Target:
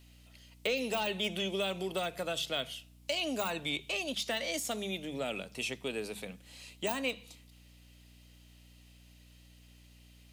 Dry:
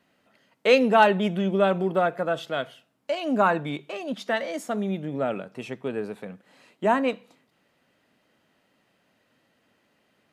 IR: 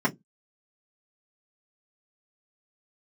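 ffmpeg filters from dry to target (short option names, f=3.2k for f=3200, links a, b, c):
-filter_complex "[0:a]deesser=1,bandreject=f=50.85:t=h:w=4,bandreject=f=101.7:t=h:w=4,bandreject=f=152.55:t=h:w=4,bandreject=f=203.4:t=h:w=4,acrossover=split=290|2600[a][b][c];[a]acompressor=threshold=-39dB:ratio=4[d];[b]acompressor=threshold=-28dB:ratio=4[e];[c]acompressor=threshold=-45dB:ratio=4[f];[d][e][f]amix=inputs=3:normalize=0,aexciter=amount=6.7:drive=3.6:freq=2.3k,aeval=exprs='val(0)+0.00282*(sin(2*PI*60*n/s)+sin(2*PI*2*60*n/s)/2+sin(2*PI*3*60*n/s)/3+sin(2*PI*4*60*n/s)/4+sin(2*PI*5*60*n/s)/5)':c=same,volume=-6dB"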